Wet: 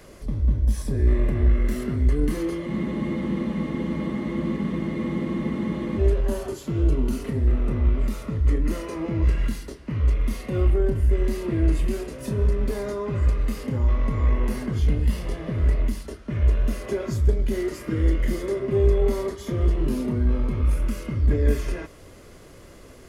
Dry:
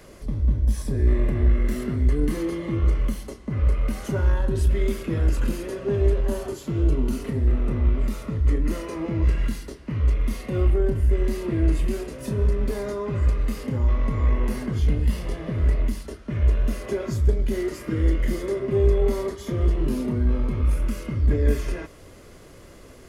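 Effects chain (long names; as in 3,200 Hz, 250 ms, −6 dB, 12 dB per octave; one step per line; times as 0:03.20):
frozen spectrum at 0:02.69, 3.30 s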